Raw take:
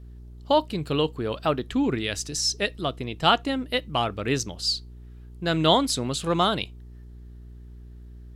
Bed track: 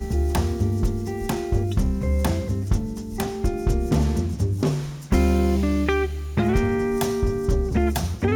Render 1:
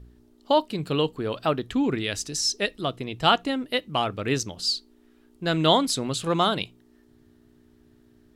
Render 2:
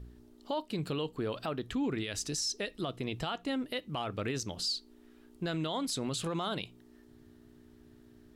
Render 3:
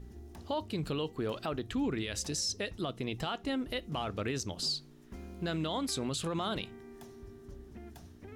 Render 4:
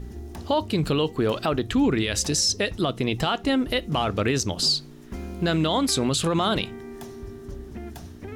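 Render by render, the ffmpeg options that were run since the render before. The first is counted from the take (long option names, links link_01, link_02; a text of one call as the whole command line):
ffmpeg -i in.wav -af "bandreject=frequency=60:width_type=h:width=4,bandreject=frequency=120:width_type=h:width=4,bandreject=frequency=180:width_type=h:width=4" out.wav
ffmpeg -i in.wav -af "acompressor=threshold=-31dB:ratio=2.5,alimiter=level_in=1.5dB:limit=-24dB:level=0:latency=1:release=24,volume=-1.5dB" out.wav
ffmpeg -i in.wav -i bed.wav -filter_complex "[1:a]volume=-28dB[link_01];[0:a][link_01]amix=inputs=2:normalize=0" out.wav
ffmpeg -i in.wav -af "volume=11.5dB" out.wav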